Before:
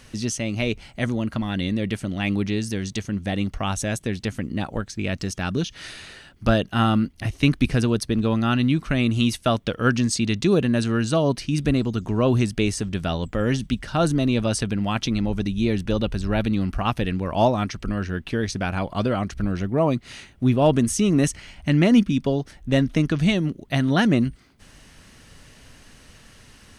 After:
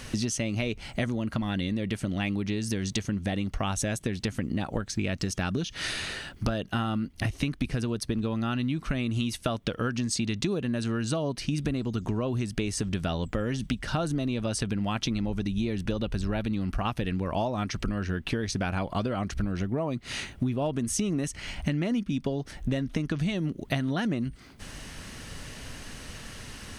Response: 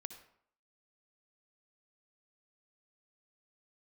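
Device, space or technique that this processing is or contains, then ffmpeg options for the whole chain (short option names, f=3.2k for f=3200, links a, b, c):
serial compression, leveller first: -af "acompressor=threshold=-22dB:ratio=2,acompressor=threshold=-33dB:ratio=6,volume=7dB"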